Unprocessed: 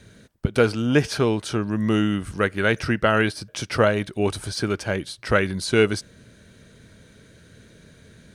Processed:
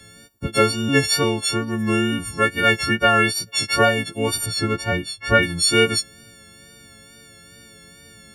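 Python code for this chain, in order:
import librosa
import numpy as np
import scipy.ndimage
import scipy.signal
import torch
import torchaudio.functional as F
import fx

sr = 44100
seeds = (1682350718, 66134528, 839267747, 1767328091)

y = fx.freq_snap(x, sr, grid_st=4)
y = fx.bass_treble(y, sr, bass_db=4, treble_db=-9, at=(4.46, 5.43))
y = fx.wow_flutter(y, sr, seeds[0], rate_hz=2.1, depth_cents=36.0)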